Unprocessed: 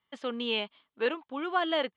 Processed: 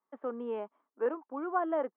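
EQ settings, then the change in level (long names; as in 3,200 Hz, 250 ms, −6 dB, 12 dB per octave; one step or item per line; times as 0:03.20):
high-pass filter 250 Hz 24 dB per octave
low-pass filter 1,300 Hz 24 dB per octave
high-frequency loss of the air 67 metres
−1.0 dB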